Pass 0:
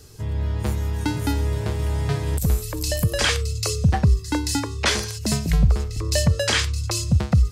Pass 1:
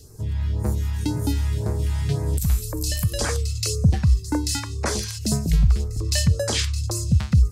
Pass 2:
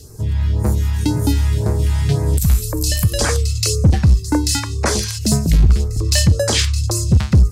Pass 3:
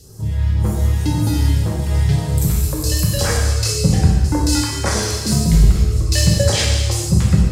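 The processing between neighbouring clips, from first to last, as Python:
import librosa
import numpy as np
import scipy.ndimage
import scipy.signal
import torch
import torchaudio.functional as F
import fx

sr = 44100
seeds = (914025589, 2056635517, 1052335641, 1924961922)

y1 = fx.phaser_stages(x, sr, stages=2, low_hz=390.0, high_hz=3100.0, hz=1.9, feedback_pct=20)
y2 = fx.clip_asym(y1, sr, top_db=-15.0, bottom_db=-11.0)
y2 = y2 * librosa.db_to_amplitude(7.0)
y3 = fx.rev_gated(y2, sr, seeds[0], gate_ms=490, shape='falling', drr_db=-3.5)
y3 = y3 * librosa.db_to_amplitude(-5.0)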